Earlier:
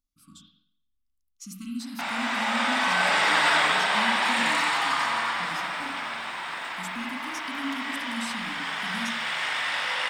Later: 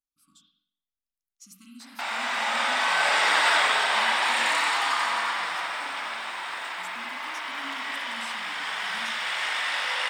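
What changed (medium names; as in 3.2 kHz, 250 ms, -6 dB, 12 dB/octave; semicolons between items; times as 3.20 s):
speech -7.5 dB; master: add tone controls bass -12 dB, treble +2 dB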